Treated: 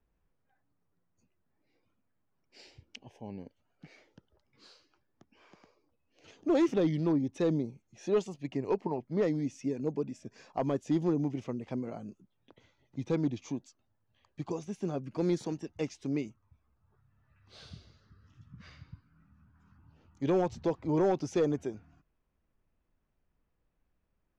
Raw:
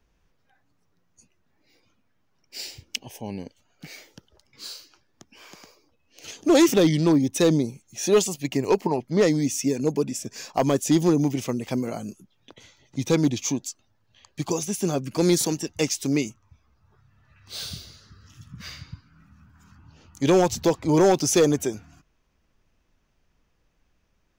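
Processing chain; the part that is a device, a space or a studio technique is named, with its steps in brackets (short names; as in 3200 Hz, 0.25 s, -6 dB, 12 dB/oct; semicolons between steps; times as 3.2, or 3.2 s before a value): through cloth (LPF 6900 Hz 12 dB/oct; high shelf 3300 Hz -17 dB); gain -9 dB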